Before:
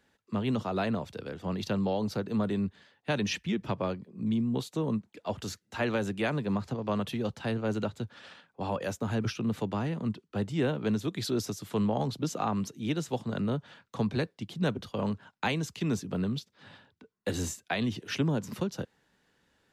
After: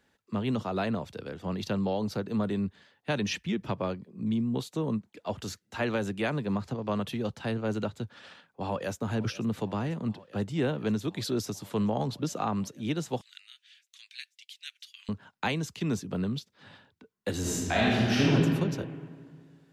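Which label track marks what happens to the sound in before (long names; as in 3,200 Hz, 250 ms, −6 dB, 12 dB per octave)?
8.170000	9.000000	delay throw 490 ms, feedback 85%, level −18 dB
13.210000	15.090000	Butterworth high-pass 2,100 Hz
17.400000	18.290000	thrown reverb, RT60 2 s, DRR −7 dB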